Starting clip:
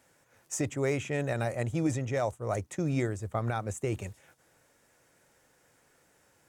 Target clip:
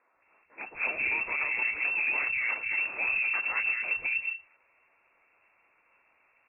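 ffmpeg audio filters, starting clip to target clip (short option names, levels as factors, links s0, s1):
-filter_complex "[0:a]equalizer=f=100:w=5.6:g=9.5,aresample=8000,acrusher=bits=3:mode=log:mix=0:aa=0.000001,aresample=44100,asplit=4[s0][s1][s2][s3];[s1]asetrate=55563,aresample=44100,atempo=0.793701,volume=0.562[s4];[s2]asetrate=58866,aresample=44100,atempo=0.749154,volume=0.447[s5];[s3]asetrate=66075,aresample=44100,atempo=0.66742,volume=0.178[s6];[s0][s4][s5][s6]amix=inputs=4:normalize=0,aeval=exprs='0.1*(abs(mod(val(0)/0.1+3,4)-2)-1)':c=same,lowpass=f=2400:t=q:w=0.5098,lowpass=f=2400:t=q:w=0.6013,lowpass=f=2400:t=q:w=0.9,lowpass=f=2400:t=q:w=2.563,afreqshift=-2800,acrossover=split=170|1800[s7][s8][s9];[s7]adelay=140[s10];[s9]adelay=220[s11];[s10][s8][s11]amix=inputs=3:normalize=0"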